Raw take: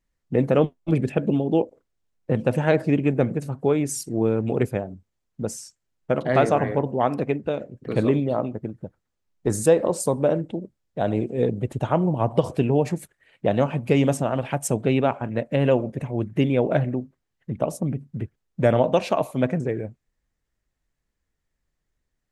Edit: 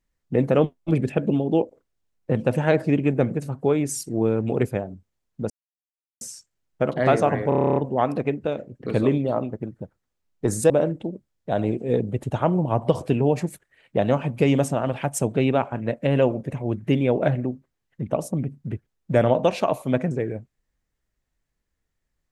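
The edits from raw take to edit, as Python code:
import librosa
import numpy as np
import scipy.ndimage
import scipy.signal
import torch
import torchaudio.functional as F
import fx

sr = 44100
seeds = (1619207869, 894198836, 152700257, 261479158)

y = fx.edit(x, sr, fx.insert_silence(at_s=5.5, length_s=0.71),
    fx.stutter(start_s=6.78, slice_s=0.03, count=10),
    fx.cut(start_s=9.72, length_s=0.47), tone=tone)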